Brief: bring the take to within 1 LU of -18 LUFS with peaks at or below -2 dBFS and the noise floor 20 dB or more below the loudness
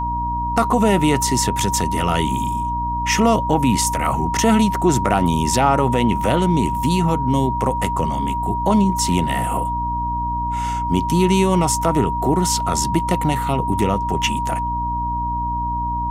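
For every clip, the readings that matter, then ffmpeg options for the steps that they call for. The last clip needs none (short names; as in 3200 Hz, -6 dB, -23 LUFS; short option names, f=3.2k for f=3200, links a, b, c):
hum 60 Hz; harmonics up to 300 Hz; hum level -24 dBFS; steady tone 950 Hz; tone level -21 dBFS; loudness -19.0 LUFS; peak -2.0 dBFS; loudness target -18.0 LUFS
-> -af "bandreject=f=60:t=h:w=6,bandreject=f=120:t=h:w=6,bandreject=f=180:t=h:w=6,bandreject=f=240:t=h:w=6,bandreject=f=300:t=h:w=6"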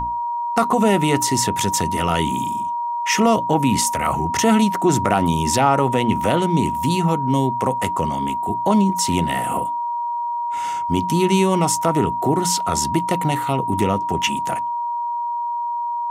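hum none; steady tone 950 Hz; tone level -21 dBFS
-> -af "bandreject=f=950:w=30"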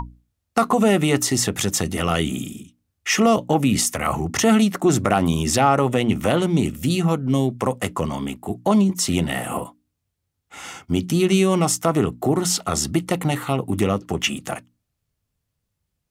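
steady tone none; loudness -20.5 LUFS; peak -3.5 dBFS; loudness target -18.0 LUFS
-> -af "volume=2.5dB,alimiter=limit=-2dB:level=0:latency=1"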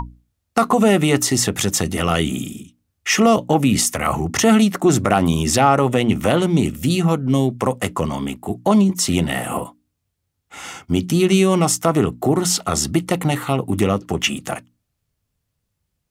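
loudness -18.0 LUFS; peak -2.0 dBFS; noise floor -75 dBFS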